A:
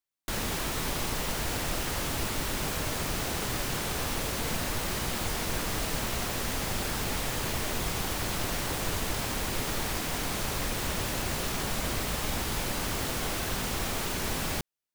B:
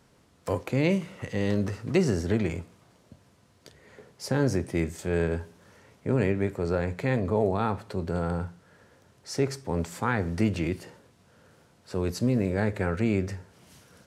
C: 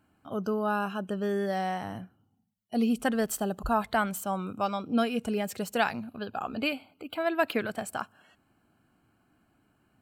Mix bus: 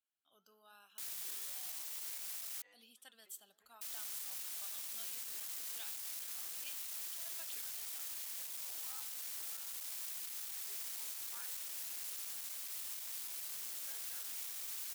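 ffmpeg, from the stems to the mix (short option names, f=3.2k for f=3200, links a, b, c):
-filter_complex "[0:a]alimiter=limit=-23.5dB:level=0:latency=1:release=187,asoftclip=type=hard:threshold=-33dB,adelay=700,volume=-5dB,asplit=3[a][b][c];[a]atrim=end=2.62,asetpts=PTS-STARTPTS,afade=t=out:st=2.616:d=0.004:c=hsin[d];[b]atrim=start=2.62:end=3.81,asetpts=PTS-STARTPTS,volume=0[e];[c]atrim=start=3.81,asetpts=PTS-STARTPTS,afade=t=in:d=0.004:c=hsin[f];[d][e][f]concat=n=3:v=0:a=1[g];[1:a]bandpass=f=1.1k:t=q:w=1.2:csg=0,asplit=2[h][i];[i]adelay=3.6,afreqshift=0.68[j];[h][j]amix=inputs=2:normalize=1,adelay=1300,volume=-9dB[k];[2:a]equalizer=f=3.5k:t=o:w=0.32:g=15,flanger=delay=6.1:depth=5.3:regen=-78:speed=1.3:shape=triangular,volume=-12.5dB,asplit=2[l][m];[m]apad=whole_len=677652[n];[k][n]sidechaincompress=threshold=-53dB:ratio=8:attack=16:release=938[o];[g][o][l]amix=inputs=3:normalize=0,aderivative"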